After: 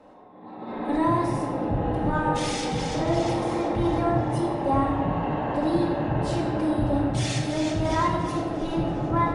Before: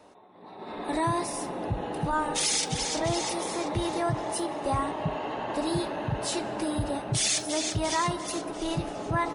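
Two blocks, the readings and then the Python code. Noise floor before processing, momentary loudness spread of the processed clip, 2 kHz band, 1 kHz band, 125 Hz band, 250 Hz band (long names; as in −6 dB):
−47 dBFS, 4 LU, +1.0 dB, +4.0 dB, +6.5 dB, +7.5 dB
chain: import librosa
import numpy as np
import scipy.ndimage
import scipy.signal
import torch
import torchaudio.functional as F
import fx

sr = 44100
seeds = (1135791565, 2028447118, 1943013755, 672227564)

p1 = fx.lowpass(x, sr, hz=1200.0, slope=6)
p2 = 10.0 ** (-28.5 / 20.0) * np.tanh(p1 / 10.0 ** (-28.5 / 20.0))
p3 = p1 + F.gain(torch.from_numpy(p2), -9.0).numpy()
y = fx.room_shoebox(p3, sr, seeds[0], volume_m3=1200.0, walls='mixed', distance_m=2.1)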